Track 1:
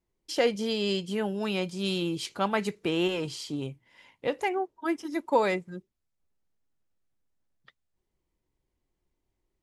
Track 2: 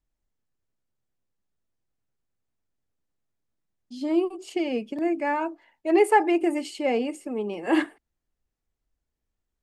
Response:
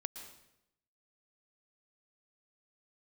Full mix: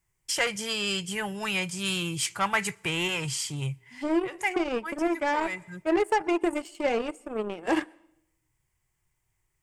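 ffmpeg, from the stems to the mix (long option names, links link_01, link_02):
-filter_complex "[0:a]highshelf=frequency=6200:gain=10,asoftclip=type=tanh:threshold=-19.5dB,equalizer=frequency=125:width_type=o:width=1:gain=11,equalizer=frequency=250:width_type=o:width=1:gain=-9,equalizer=frequency=500:width_type=o:width=1:gain=-6,equalizer=frequency=1000:width_type=o:width=1:gain=4,equalizer=frequency=2000:width_type=o:width=1:gain=9,equalizer=frequency=8000:width_type=o:width=1:gain=4,volume=0.5dB,asplit=2[link_01][link_02];[link_02]volume=-23.5dB[link_03];[1:a]acompressor=threshold=-22dB:ratio=6,aeval=exprs='0.178*(cos(1*acos(clip(val(0)/0.178,-1,1)))-cos(1*PI/2))+0.00562*(cos(5*acos(clip(val(0)/0.178,-1,1)))-cos(5*PI/2))+0.0224*(cos(7*acos(clip(val(0)/0.178,-1,1)))-cos(7*PI/2))':channel_layout=same,volume=0.5dB,asplit=3[link_04][link_05][link_06];[link_05]volume=-19.5dB[link_07];[link_06]apad=whole_len=424362[link_08];[link_01][link_08]sidechaincompress=threshold=-40dB:ratio=3:attack=6.7:release=250[link_09];[2:a]atrim=start_sample=2205[link_10];[link_03][link_07]amix=inputs=2:normalize=0[link_11];[link_11][link_10]afir=irnorm=-1:irlink=0[link_12];[link_09][link_04][link_12]amix=inputs=3:normalize=0,equalizer=frequency=250:width_type=o:width=0.33:gain=-6,equalizer=frequency=4000:width_type=o:width=0.33:gain=-7,equalizer=frequency=8000:width_type=o:width=0.33:gain=4"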